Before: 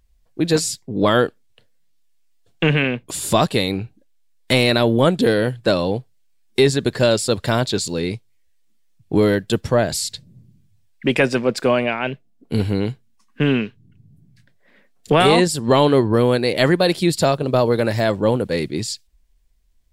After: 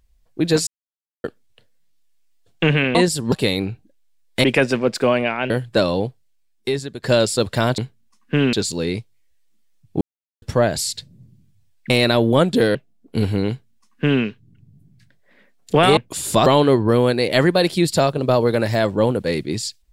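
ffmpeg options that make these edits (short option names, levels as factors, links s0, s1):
-filter_complex "[0:a]asplit=16[s0][s1][s2][s3][s4][s5][s6][s7][s8][s9][s10][s11][s12][s13][s14][s15];[s0]atrim=end=0.67,asetpts=PTS-STARTPTS,afade=t=out:st=0.666:d=0.004:c=hsin[s16];[s1]atrim=start=0.67:end=1.24,asetpts=PTS-STARTPTS,volume=0[s17];[s2]atrim=start=1.24:end=2.952,asetpts=PTS-STARTPTS,afade=t=in:d=0.004:c=hsin[s18];[s3]atrim=start=15.338:end=15.712[s19];[s4]atrim=start=3.438:end=4.562[s20];[s5]atrim=start=11.058:end=12.122[s21];[s6]atrim=start=5.408:end=6.94,asetpts=PTS-STARTPTS,afade=t=out:st=0.502:d=1.03:silence=0.16788[s22];[s7]atrim=start=6.94:end=7.692,asetpts=PTS-STARTPTS,afade=t=in:d=0.004:c=hsin:silence=0.16788[s23];[s8]atrim=start=12.848:end=13.602[s24];[s9]atrim=start=7.688:end=9.17,asetpts=PTS-STARTPTS,afade=t=out:st=1.478:d=0.004:c=hsin[s25];[s10]atrim=start=9.17:end=9.58,asetpts=PTS-STARTPTS,volume=0[s26];[s11]atrim=start=9.58:end=11.062,asetpts=PTS-STARTPTS,afade=t=in:d=0.004:c=hsin[s27];[s12]atrim=start=4.558:end=5.412[s28];[s13]atrim=start=12.118:end=15.342[s29];[s14]atrim=start=2.948:end=3.442[s30];[s15]atrim=start=15.708[s31];[s16][s17][s18]concat=n=3:v=0:a=1[s32];[s32][s19]acrossfade=d=0.004:c1=hsin:c2=hsin[s33];[s33][s20]acrossfade=d=0.004:c1=hsin:c2=hsin[s34];[s34][s21]acrossfade=d=0.004:c1=hsin:c2=hsin[s35];[s22][s23]concat=n=2:v=0:a=1[s36];[s35][s36]acrossfade=d=0.004:c1=hsin:c2=hsin[s37];[s37][s24]acrossfade=d=0.004:c1=hsin:c2=hsin[s38];[s25][s26][s27]concat=n=3:v=0:a=1[s39];[s38][s39]acrossfade=d=0.004:c1=hsin:c2=hsin[s40];[s40][s28]acrossfade=d=0.004:c1=hsin:c2=hsin[s41];[s41][s29]acrossfade=d=0.004:c1=hsin:c2=hsin[s42];[s42][s30]acrossfade=d=0.004:c1=hsin:c2=hsin[s43];[s43][s31]acrossfade=d=0.004:c1=hsin:c2=hsin"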